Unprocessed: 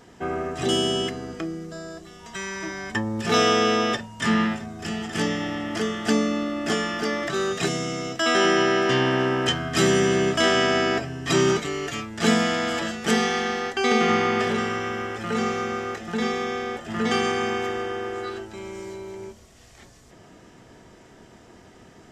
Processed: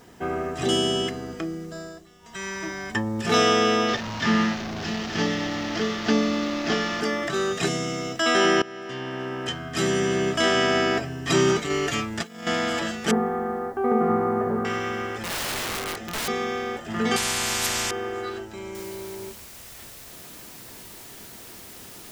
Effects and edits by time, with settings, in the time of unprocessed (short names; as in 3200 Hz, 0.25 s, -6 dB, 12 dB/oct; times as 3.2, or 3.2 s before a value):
1.81–2.47 dip -9 dB, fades 0.26 s
3.88–7.01 delta modulation 32 kbps, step -25.5 dBFS
8.62–10.8 fade in, from -20.5 dB
11.7–12.47 negative-ratio compressor -28 dBFS, ratio -0.5
13.11–14.65 LPF 1200 Hz 24 dB/oct
15.21–16.28 wrapped overs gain 24 dB
17.16–17.91 spectral compressor 10:1
18.75 noise floor step -64 dB -44 dB